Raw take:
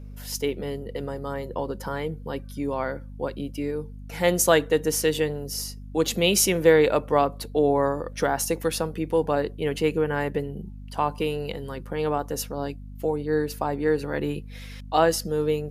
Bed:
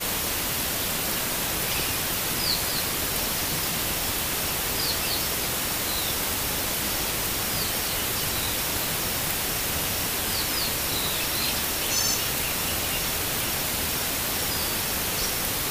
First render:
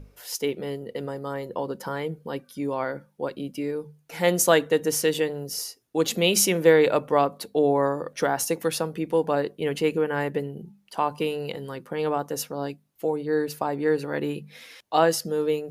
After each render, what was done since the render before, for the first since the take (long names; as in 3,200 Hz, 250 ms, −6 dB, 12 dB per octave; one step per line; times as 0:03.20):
mains-hum notches 50/100/150/200/250 Hz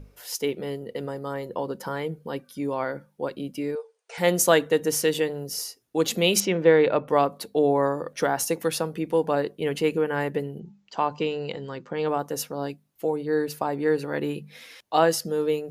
0:03.75–0:04.18: linear-phase brick-wall band-pass 380–9,600 Hz
0:06.40–0:07.08: high-frequency loss of the air 180 metres
0:10.59–0:12.09: Butterworth low-pass 7,600 Hz 96 dB per octave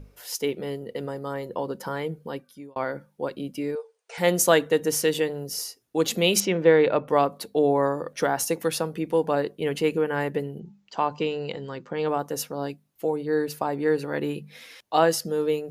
0:02.24–0:02.76: fade out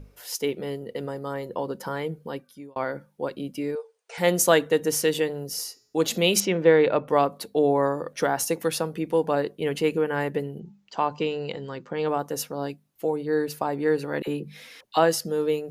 0:05.51–0:06.18: hum removal 213.4 Hz, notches 35
0:14.22–0:14.97: all-pass dispersion lows, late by 52 ms, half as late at 890 Hz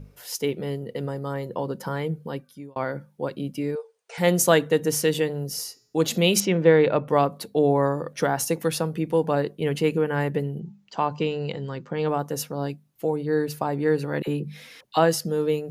parametric band 140 Hz +7.5 dB 1.1 octaves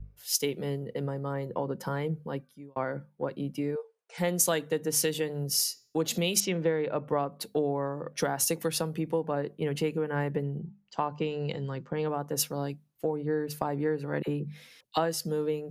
downward compressor 6 to 1, threshold −26 dBFS, peak gain reduction 14 dB
multiband upward and downward expander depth 70%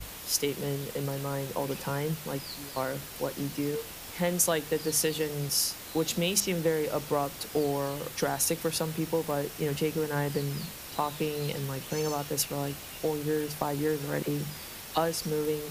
mix in bed −16 dB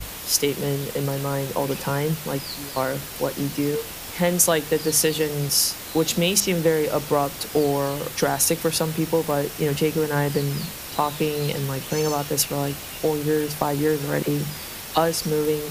level +7.5 dB
brickwall limiter −3 dBFS, peak gain reduction 1 dB